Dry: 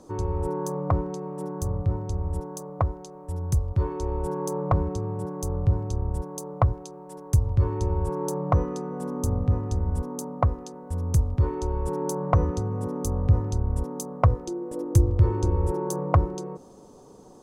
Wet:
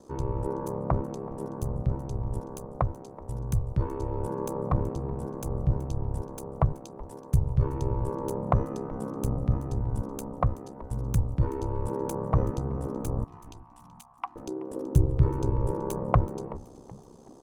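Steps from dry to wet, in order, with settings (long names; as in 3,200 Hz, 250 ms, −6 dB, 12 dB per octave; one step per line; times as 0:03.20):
stylus tracing distortion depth 0.022 ms
dynamic equaliser 5,900 Hz, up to −6 dB, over −54 dBFS, Q 1.2
0:13.24–0:14.36: Chebyshev high-pass with heavy ripple 740 Hz, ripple 9 dB
ring modulation 33 Hz
on a send: echo with shifted repeats 377 ms, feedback 42%, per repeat −120 Hz, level −18 dB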